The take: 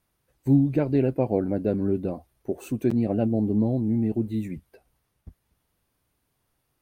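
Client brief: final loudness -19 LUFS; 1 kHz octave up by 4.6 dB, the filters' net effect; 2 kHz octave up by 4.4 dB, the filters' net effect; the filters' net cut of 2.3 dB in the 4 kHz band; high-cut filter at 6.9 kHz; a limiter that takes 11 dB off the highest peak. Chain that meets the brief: low-pass 6.9 kHz; peaking EQ 1 kHz +6.5 dB; peaking EQ 2 kHz +5 dB; peaking EQ 4 kHz -5.5 dB; trim +11 dB; peak limiter -8.5 dBFS

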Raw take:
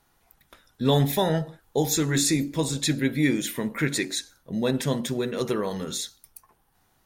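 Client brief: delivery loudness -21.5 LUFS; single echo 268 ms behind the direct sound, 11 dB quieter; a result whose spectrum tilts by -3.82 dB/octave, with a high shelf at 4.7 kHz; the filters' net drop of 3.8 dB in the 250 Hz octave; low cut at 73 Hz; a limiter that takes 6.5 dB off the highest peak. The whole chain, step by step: high-pass 73 Hz; peaking EQ 250 Hz -5 dB; treble shelf 4.7 kHz +5.5 dB; peak limiter -15.5 dBFS; delay 268 ms -11 dB; trim +5.5 dB

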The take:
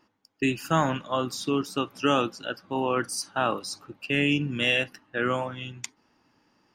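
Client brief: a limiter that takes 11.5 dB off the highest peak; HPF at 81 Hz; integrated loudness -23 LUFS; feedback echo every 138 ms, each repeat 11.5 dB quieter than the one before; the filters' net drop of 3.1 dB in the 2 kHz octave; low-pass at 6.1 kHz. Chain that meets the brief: high-pass 81 Hz; low-pass 6.1 kHz; peaking EQ 2 kHz -4.5 dB; peak limiter -22 dBFS; feedback delay 138 ms, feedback 27%, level -11.5 dB; trim +10.5 dB

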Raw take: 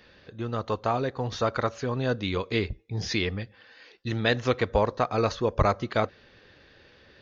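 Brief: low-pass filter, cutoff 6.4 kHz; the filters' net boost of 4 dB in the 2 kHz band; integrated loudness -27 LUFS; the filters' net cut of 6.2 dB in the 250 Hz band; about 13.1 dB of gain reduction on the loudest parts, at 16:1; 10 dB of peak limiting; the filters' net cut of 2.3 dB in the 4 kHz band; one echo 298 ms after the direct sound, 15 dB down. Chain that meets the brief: low-pass 6.4 kHz; peaking EQ 250 Hz -8.5 dB; peaking EQ 2 kHz +6 dB; peaking EQ 4 kHz -4 dB; compression 16:1, threshold -30 dBFS; peak limiter -28 dBFS; delay 298 ms -15 dB; trim +12.5 dB

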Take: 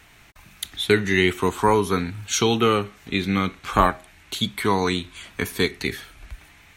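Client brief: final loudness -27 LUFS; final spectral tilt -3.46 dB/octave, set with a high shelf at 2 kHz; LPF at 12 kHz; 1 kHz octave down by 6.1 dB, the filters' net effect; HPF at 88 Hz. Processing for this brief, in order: high-pass 88 Hz; low-pass 12 kHz; peaking EQ 1 kHz -8.5 dB; treble shelf 2 kHz +4.5 dB; trim -4 dB

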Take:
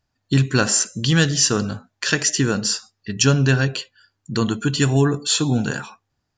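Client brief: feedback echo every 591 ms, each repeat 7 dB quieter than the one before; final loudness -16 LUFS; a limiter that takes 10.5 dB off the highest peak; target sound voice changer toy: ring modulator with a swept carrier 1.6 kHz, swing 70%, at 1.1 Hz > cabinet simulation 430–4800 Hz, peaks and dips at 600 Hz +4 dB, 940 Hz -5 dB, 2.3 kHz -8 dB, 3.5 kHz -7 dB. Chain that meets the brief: peak limiter -13 dBFS; feedback delay 591 ms, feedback 45%, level -7 dB; ring modulator with a swept carrier 1.6 kHz, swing 70%, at 1.1 Hz; cabinet simulation 430–4800 Hz, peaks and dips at 600 Hz +4 dB, 940 Hz -5 dB, 2.3 kHz -8 dB, 3.5 kHz -7 dB; trim +12 dB

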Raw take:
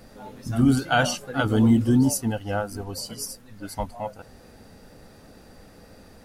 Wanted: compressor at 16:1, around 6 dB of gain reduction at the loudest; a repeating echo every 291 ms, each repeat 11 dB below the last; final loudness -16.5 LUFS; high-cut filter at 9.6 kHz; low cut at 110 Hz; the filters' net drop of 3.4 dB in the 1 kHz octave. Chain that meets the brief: high-pass 110 Hz; low-pass 9.6 kHz; peaking EQ 1 kHz -5.5 dB; compression 16:1, threshold -20 dBFS; feedback delay 291 ms, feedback 28%, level -11 dB; trim +12 dB

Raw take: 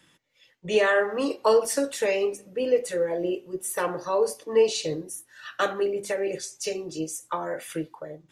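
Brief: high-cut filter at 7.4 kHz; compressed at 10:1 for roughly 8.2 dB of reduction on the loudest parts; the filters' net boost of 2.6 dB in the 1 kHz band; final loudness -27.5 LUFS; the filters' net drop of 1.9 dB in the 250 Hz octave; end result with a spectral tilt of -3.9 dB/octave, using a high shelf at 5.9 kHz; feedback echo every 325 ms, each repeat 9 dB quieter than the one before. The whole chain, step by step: low-pass 7.4 kHz; peaking EQ 250 Hz -3 dB; peaking EQ 1 kHz +3.5 dB; treble shelf 5.9 kHz -7 dB; compression 10:1, threshold -23 dBFS; feedback delay 325 ms, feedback 35%, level -9 dB; trim +2.5 dB

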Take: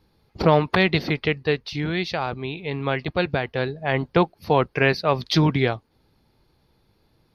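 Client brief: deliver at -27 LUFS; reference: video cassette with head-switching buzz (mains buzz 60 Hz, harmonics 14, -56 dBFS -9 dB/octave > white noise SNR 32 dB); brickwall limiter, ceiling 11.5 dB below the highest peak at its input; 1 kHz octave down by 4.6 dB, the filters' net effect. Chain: peaking EQ 1 kHz -6 dB; peak limiter -17.5 dBFS; mains buzz 60 Hz, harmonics 14, -56 dBFS -9 dB/octave; white noise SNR 32 dB; trim +2 dB

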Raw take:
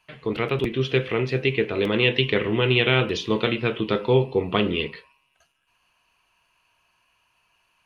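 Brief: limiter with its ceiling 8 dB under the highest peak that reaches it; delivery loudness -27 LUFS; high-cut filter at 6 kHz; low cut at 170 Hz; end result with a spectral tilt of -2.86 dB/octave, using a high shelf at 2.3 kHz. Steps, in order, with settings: high-pass 170 Hz; low-pass 6 kHz; treble shelf 2.3 kHz +5 dB; trim -3 dB; peak limiter -13.5 dBFS

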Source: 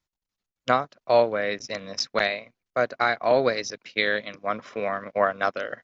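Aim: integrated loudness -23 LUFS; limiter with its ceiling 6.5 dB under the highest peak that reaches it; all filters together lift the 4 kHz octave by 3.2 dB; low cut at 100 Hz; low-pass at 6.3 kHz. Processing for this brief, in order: high-pass 100 Hz; low-pass 6.3 kHz; peaking EQ 4 kHz +4.5 dB; trim +3.5 dB; peak limiter -8.5 dBFS

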